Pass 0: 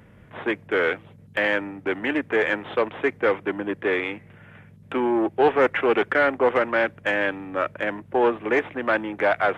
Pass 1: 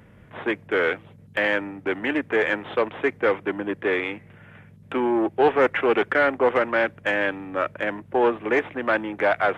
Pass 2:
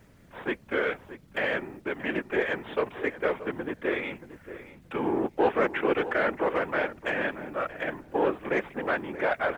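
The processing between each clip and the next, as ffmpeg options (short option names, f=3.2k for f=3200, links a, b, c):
-af anull
-filter_complex "[0:a]acrusher=bits=9:mix=0:aa=0.000001,afftfilt=real='hypot(re,im)*cos(2*PI*random(0))':imag='hypot(re,im)*sin(2*PI*random(1))':win_size=512:overlap=0.75,asplit=2[a][b];[b]adelay=629,lowpass=f=1.9k:p=1,volume=-13dB,asplit=2[c][d];[d]adelay=629,lowpass=f=1.9k:p=1,volume=0.16[e];[a][c][e]amix=inputs=3:normalize=0"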